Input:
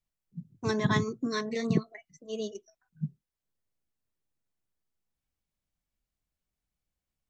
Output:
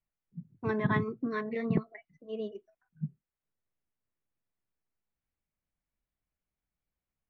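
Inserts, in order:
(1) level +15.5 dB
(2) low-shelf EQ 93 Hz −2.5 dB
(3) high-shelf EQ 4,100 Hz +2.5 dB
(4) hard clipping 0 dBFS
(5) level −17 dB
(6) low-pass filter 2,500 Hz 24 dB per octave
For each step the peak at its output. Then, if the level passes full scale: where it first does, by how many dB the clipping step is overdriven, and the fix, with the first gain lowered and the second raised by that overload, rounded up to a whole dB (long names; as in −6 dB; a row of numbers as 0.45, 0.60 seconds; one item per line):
+4.0, +3.5, +3.5, 0.0, −17.0, −16.5 dBFS
step 1, 3.5 dB
step 1 +11.5 dB, step 5 −13 dB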